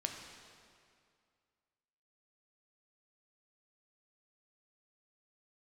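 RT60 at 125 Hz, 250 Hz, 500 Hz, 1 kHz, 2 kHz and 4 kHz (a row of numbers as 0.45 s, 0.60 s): 2.2 s, 2.2 s, 2.2 s, 2.3 s, 2.1 s, 1.9 s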